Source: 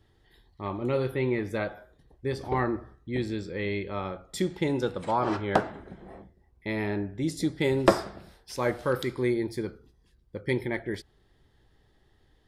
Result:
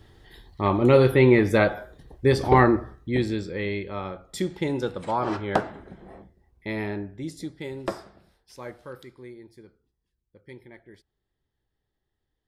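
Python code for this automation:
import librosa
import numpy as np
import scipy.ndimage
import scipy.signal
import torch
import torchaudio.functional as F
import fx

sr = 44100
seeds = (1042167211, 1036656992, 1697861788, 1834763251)

y = fx.gain(x, sr, db=fx.line((2.52, 11.0), (3.85, 0.5), (6.8, 0.5), (7.69, -10.0), (8.52, -10.0), (9.3, -17.0)))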